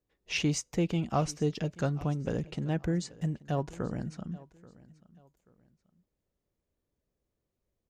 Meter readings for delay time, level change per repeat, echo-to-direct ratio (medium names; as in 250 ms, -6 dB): 833 ms, -10.0 dB, -20.5 dB